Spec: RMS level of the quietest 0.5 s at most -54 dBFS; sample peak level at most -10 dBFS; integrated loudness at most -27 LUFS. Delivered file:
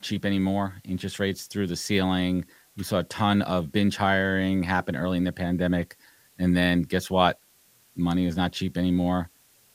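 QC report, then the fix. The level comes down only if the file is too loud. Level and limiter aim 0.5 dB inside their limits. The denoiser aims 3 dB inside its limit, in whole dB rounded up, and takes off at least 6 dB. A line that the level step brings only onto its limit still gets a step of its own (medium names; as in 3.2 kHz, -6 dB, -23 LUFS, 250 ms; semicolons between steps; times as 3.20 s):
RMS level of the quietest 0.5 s -60 dBFS: pass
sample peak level -5.5 dBFS: fail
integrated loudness -25.5 LUFS: fail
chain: trim -2 dB; peak limiter -10.5 dBFS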